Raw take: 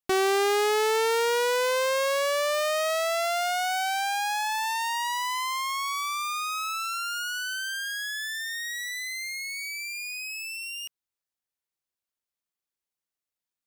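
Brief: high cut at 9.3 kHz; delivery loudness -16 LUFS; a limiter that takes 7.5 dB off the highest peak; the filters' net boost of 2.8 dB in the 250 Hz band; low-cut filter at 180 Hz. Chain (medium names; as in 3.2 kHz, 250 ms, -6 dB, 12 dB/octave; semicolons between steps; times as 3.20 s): high-pass 180 Hz; low-pass 9.3 kHz; peaking EQ 250 Hz +7.5 dB; trim +12.5 dB; peak limiter -8 dBFS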